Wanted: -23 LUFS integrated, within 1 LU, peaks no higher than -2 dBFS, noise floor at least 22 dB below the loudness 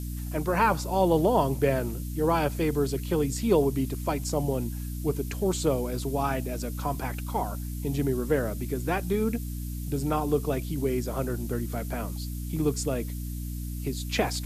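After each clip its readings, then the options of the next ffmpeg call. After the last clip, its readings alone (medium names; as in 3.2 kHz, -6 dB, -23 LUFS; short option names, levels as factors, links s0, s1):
hum 60 Hz; highest harmonic 300 Hz; hum level -31 dBFS; noise floor -34 dBFS; noise floor target -51 dBFS; loudness -28.5 LUFS; peak level -9.0 dBFS; loudness target -23.0 LUFS
-> -af "bandreject=f=60:t=h:w=6,bandreject=f=120:t=h:w=6,bandreject=f=180:t=h:w=6,bandreject=f=240:t=h:w=6,bandreject=f=300:t=h:w=6"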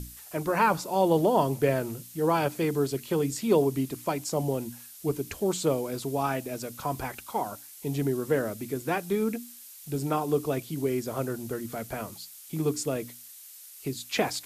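hum not found; noise floor -48 dBFS; noise floor target -51 dBFS
-> -af "afftdn=nr=6:nf=-48"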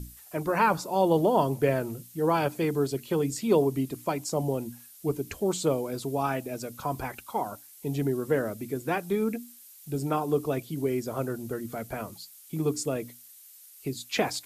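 noise floor -52 dBFS; loudness -29.0 LUFS; peak level -9.5 dBFS; loudness target -23.0 LUFS
-> -af "volume=2"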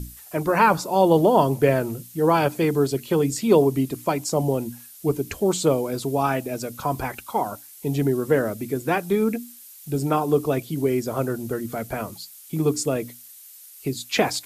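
loudness -23.0 LUFS; peak level -3.5 dBFS; noise floor -46 dBFS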